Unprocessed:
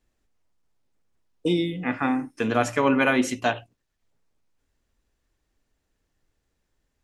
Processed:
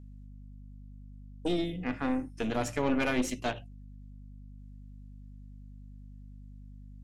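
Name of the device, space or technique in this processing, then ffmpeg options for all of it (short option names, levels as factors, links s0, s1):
valve amplifier with mains hum: -af "equalizer=f=1200:t=o:w=1.9:g=-7,aeval=exprs='(tanh(10*val(0)+0.65)-tanh(0.65))/10':c=same,aeval=exprs='val(0)+0.00562*(sin(2*PI*50*n/s)+sin(2*PI*2*50*n/s)/2+sin(2*PI*3*50*n/s)/3+sin(2*PI*4*50*n/s)/4+sin(2*PI*5*50*n/s)/5)':c=same,volume=0.841"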